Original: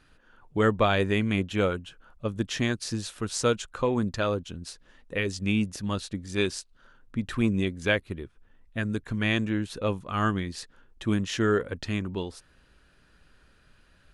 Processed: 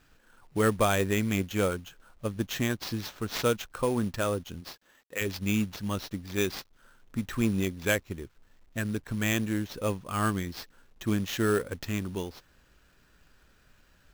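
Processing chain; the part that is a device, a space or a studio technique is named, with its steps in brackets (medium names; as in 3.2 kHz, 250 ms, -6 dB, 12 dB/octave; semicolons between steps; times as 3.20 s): 4.60–5.20 s: high-pass 250 Hz -> 750 Hz 6 dB/octave; early companding sampler (sample-rate reducer 9.6 kHz, jitter 0%; companded quantiser 6-bit); trim -2 dB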